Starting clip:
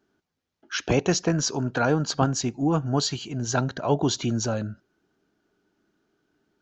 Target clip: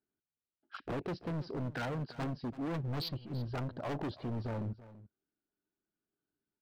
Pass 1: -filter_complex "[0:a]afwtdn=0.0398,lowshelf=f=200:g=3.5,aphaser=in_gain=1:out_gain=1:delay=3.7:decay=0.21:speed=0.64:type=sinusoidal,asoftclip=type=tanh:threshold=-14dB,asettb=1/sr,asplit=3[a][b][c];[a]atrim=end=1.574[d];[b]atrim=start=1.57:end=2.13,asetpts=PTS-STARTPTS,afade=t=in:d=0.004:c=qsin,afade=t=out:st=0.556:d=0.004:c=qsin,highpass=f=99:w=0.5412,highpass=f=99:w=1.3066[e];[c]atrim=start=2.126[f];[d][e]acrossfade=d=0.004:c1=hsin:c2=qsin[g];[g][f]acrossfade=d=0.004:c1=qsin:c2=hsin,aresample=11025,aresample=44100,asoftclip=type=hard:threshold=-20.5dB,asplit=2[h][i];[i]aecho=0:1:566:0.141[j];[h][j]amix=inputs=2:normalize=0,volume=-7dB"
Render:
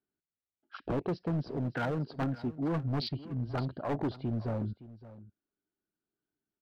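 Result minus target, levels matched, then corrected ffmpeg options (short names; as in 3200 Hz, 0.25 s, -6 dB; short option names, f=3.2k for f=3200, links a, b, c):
echo 0.232 s late; hard clip: distortion -7 dB
-filter_complex "[0:a]afwtdn=0.0398,lowshelf=f=200:g=3.5,aphaser=in_gain=1:out_gain=1:delay=3.7:decay=0.21:speed=0.64:type=sinusoidal,asoftclip=type=tanh:threshold=-14dB,asettb=1/sr,asplit=3[a][b][c];[a]atrim=end=1.574[d];[b]atrim=start=1.57:end=2.13,asetpts=PTS-STARTPTS,afade=t=in:d=0.004:c=qsin,afade=t=out:st=0.556:d=0.004:c=qsin,highpass=f=99:w=0.5412,highpass=f=99:w=1.3066[e];[c]atrim=start=2.126[f];[d][e]acrossfade=d=0.004:c1=hsin:c2=qsin[g];[g][f]acrossfade=d=0.004:c1=qsin:c2=hsin,aresample=11025,aresample=44100,asoftclip=type=hard:threshold=-27.5dB,asplit=2[h][i];[i]aecho=0:1:334:0.141[j];[h][j]amix=inputs=2:normalize=0,volume=-7dB"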